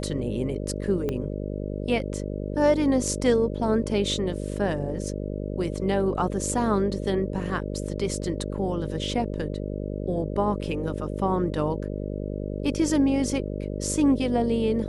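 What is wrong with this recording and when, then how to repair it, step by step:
buzz 50 Hz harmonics 12 -31 dBFS
1.09 pop -16 dBFS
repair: de-click; de-hum 50 Hz, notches 12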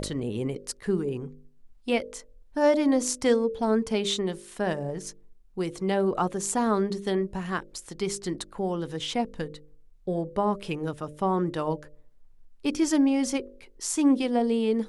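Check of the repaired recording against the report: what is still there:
1.09 pop

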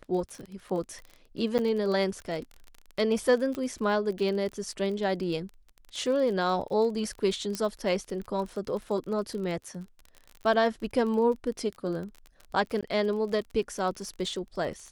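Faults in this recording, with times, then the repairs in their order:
crackle 30/s -35 dBFS
1.58–1.59 gap 8.9 ms
3.55 pop -21 dBFS
7.55 pop -16 dBFS
12.81–12.83 gap 16 ms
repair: de-click; interpolate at 1.58, 8.9 ms; interpolate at 12.81, 16 ms

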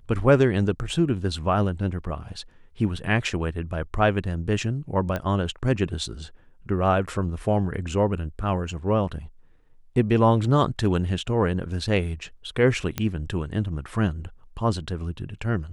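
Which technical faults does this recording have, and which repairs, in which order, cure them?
5.16 pop -15 dBFS
12.98 pop -11 dBFS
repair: de-click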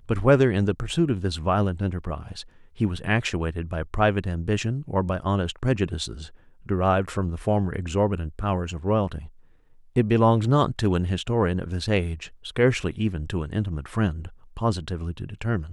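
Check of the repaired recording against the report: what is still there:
none

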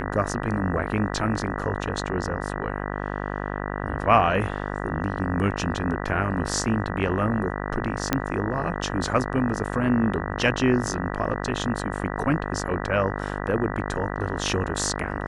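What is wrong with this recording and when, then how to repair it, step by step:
buzz 50 Hz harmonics 39 -30 dBFS
8.13 pop -6 dBFS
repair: de-click; de-hum 50 Hz, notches 39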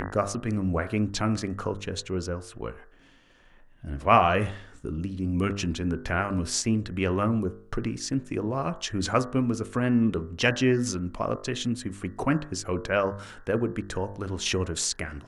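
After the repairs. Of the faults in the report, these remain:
none

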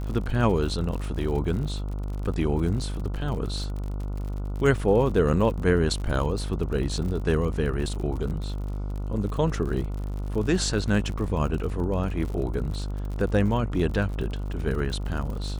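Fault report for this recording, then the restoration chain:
buzz 50 Hz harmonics 29 -30 dBFS
crackle 52/s -33 dBFS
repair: de-click; de-hum 50 Hz, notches 29

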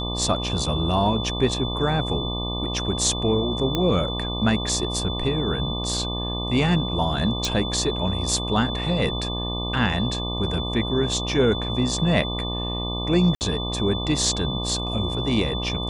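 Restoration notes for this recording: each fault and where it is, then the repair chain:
buzz 60 Hz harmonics 20 -29 dBFS
tone 3500 Hz -30 dBFS
3.75 pop -10 dBFS
7.45 pop
13.35–13.41 gap 59 ms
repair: de-click; notch 3500 Hz, Q 30; de-hum 60 Hz, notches 20; interpolate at 13.35, 59 ms

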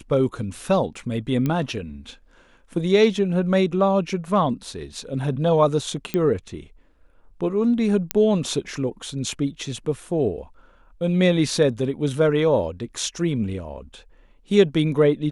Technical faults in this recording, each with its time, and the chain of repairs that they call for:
1.46 pop -12 dBFS
6.14 pop -11 dBFS
8.11 pop -4 dBFS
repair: de-click

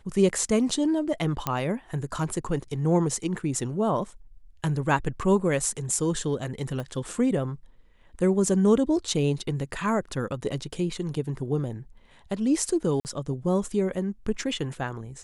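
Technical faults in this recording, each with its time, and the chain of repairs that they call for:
1.47 pop -11 dBFS
6.8 pop -22 dBFS
13–13.05 gap 49 ms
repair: de-click; interpolate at 13, 49 ms

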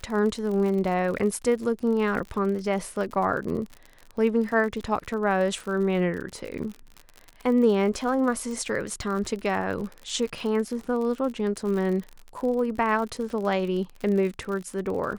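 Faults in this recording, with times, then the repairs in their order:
crackle 58/s -32 dBFS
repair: de-click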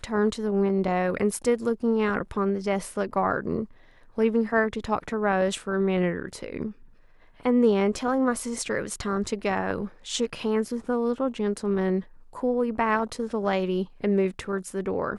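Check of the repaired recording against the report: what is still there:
none

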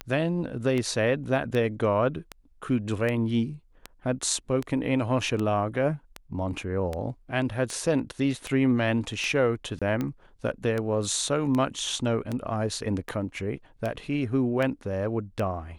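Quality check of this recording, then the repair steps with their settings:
tick 78 rpm -17 dBFS
9.79–9.82 gap 26 ms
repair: de-click; interpolate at 9.79, 26 ms

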